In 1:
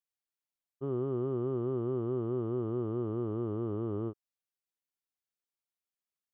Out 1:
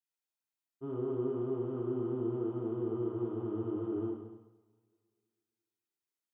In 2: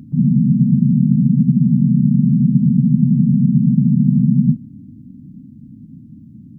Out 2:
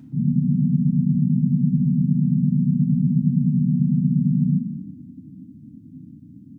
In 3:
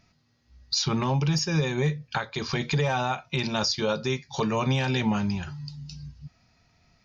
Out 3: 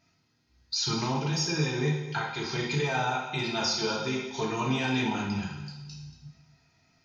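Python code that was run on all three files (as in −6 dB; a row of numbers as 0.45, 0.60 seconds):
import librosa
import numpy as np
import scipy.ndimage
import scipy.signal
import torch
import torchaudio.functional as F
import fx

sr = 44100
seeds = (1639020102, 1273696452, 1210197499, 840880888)

y = fx.low_shelf(x, sr, hz=140.0, db=-7.0)
y = fx.notch_comb(y, sr, f0_hz=570.0)
y = y + 10.0 ** (-14.5 / 20.0) * np.pad(y, (int(233 * sr / 1000.0), 0))[:len(y)]
y = fx.rev_double_slope(y, sr, seeds[0], early_s=0.79, late_s=2.1, knee_db=-20, drr_db=-3.0)
y = y * 10.0 ** (-5.0 / 20.0)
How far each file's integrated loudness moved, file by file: −1.5, −6.0, −2.5 LU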